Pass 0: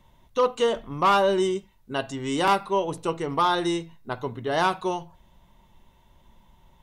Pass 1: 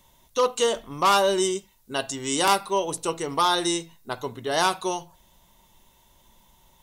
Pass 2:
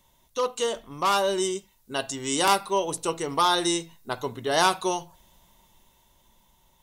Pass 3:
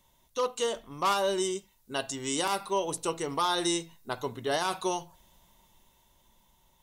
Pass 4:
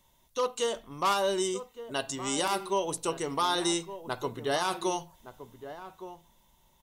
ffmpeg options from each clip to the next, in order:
-af "bass=f=250:g=-5,treble=f=4k:g=14"
-af "dynaudnorm=f=360:g=9:m=11.5dB,volume=-4.5dB"
-af "alimiter=limit=-15dB:level=0:latency=1:release=71,volume=-3dB"
-filter_complex "[0:a]asplit=2[a][b];[b]adelay=1166,volume=-12dB,highshelf=f=4k:g=-26.2[c];[a][c]amix=inputs=2:normalize=0"

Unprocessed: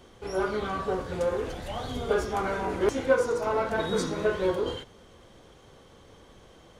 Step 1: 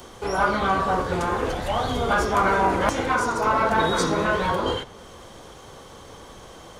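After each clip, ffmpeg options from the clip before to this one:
-filter_complex "[0:a]afftfilt=real='re*lt(hypot(re,im),0.251)':imag='im*lt(hypot(re,im),0.251)':win_size=1024:overlap=0.75,equalizer=f=1k:w=1:g=6,acrossover=split=130|4600[a][b][c];[c]acompressor=mode=upward:threshold=-54dB:ratio=2.5[d];[a][b][d]amix=inputs=3:normalize=0,volume=7.5dB"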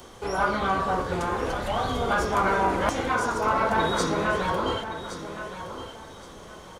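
-af "aecho=1:1:1118|2236|3354:0.282|0.0733|0.0191,volume=-3dB"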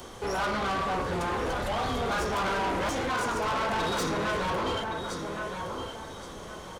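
-af "asoftclip=type=tanh:threshold=-28.5dB,volume=2.5dB"

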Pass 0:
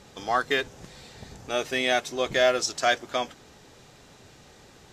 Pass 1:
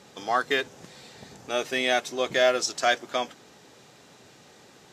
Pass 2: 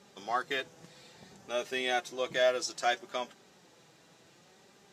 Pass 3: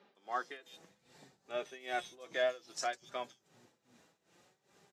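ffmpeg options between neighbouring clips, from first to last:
-af "highpass=150"
-af "flanger=delay=5:depth=1.2:regen=49:speed=0.62:shape=sinusoidal,volume=-3.5dB"
-filter_complex "[0:a]acrossover=split=190|4100[a][b][c];[c]adelay=150[d];[a]adelay=710[e];[e][b][d]amix=inputs=3:normalize=0,tremolo=f=2.5:d=0.86,volume=-4dB"

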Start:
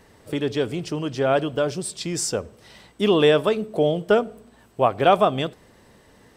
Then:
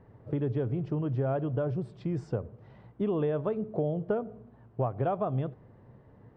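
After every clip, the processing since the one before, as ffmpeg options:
-af "lowpass=1.1k,equalizer=f=120:w=2:g=13.5,acompressor=threshold=-21dB:ratio=6,volume=-5dB"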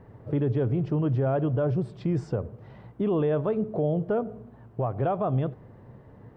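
-af "alimiter=level_in=0.5dB:limit=-24dB:level=0:latency=1:release=11,volume=-0.5dB,volume=6dB"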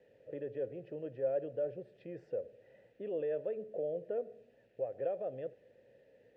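-filter_complex "[0:a]aeval=exprs='val(0)+0.00282*(sin(2*PI*50*n/s)+sin(2*PI*2*50*n/s)/2+sin(2*PI*3*50*n/s)/3+sin(2*PI*4*50*n/s)/4+sin(2*PI*5*50*n/s)/5)':c=same,acrusher=bits=9:mix=0:aa=0.000001,asplit=3[a][b][c];[a]bandpass=f=530:t=q:w=8,volume=0dB[d];[b]bandpass=f=1.84k:t=q:w=8,volume=-6dB[e];[c]bandpass=f=2.48k:t=q:w=8,volume=-9dB[f];[d][e][f]amix=inputs=3:normalize=0,volume=-1dB"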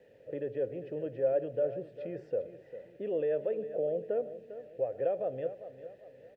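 -af "aecho=1:1:400|800|1200|1600:0.224|0.0895|0.0358|0.0143,volume=5dB"

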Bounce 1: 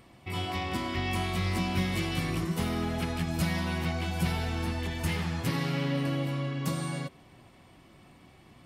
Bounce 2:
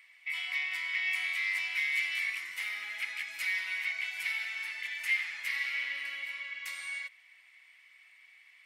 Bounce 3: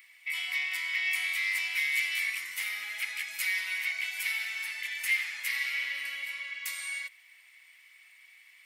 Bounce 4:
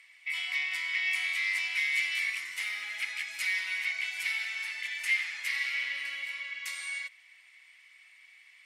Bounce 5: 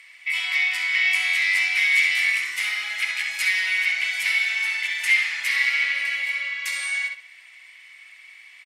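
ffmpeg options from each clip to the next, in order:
-af "highpass=f=2.1k:t=q:w=7.8,volume=-6dB"
-af "aemphasis=mode=production:type=50kf"
-af "lowpass=8.1k"
-filter_complex "[0:a]asplit=2[a][b];[b]adelay=66,lowpass=f=3.9k:p=1,volume=-3dB,asplit=2[c][d];[d]adelay=66,lowpass=f=3.9k:p=1,volume=0.28,asplit=2[e][f];[f]adelay=66,lowpass=f=3.9k:p=1,volume=0.28,asplit=2[g][h];[h]adelay=66,lowpass=f=3.9k:p=1,volume=0.28[i];[a][c][e][g][i]amix=inputs=5:normalize=0,volume=8.5dB"

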